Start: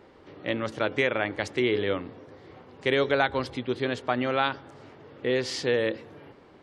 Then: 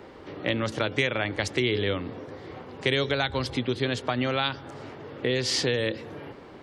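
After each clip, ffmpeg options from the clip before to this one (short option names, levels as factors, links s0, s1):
-filter_complex "[0:a]acrossover=split=160|3000[s0][s1][s2];[s1]acompressor=threshold=0.0224:ratio=6[s3];[s0][s3][s2]amix=inputs=3:normalize=0,volume=2.37"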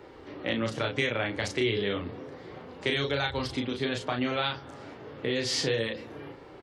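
-filter_complex "[0:a]asplit=2[s0][s1];[s1]adelay=35,volume=0.631[s2];[s0][s2]amix=inputs=2:normalize=0,flanger=delay=2.2:depth=8.3:regen=-58:speed=0.31:shape=sinusoidal"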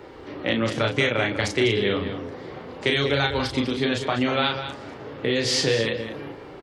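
-filter_complex "[0:a]asplit=2[s0][s1];[s1]adelay=198.3,volume=0.355,highshelf=f=4000:g=-4.46[s2];[s0][s2]amix=inputs=2:normalize=0,volume=2"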